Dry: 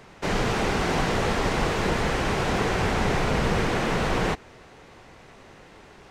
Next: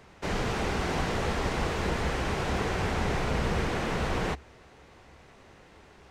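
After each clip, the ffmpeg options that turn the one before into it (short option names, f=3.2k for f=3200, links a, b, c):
-af "equalizer=f=70:w=4.3:g=10.5,volume=-5.5dB"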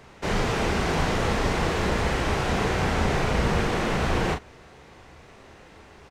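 -filter_complex "[0:a]asplit=2[a][b];[b]adelay=37,volume=-6dB[c];[a][c]amix=inputs=2:normalize=0,volume=4dB"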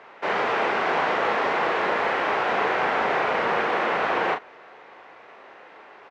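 -af "highpass=560,lowpass=2.2k,volume=6.5dB"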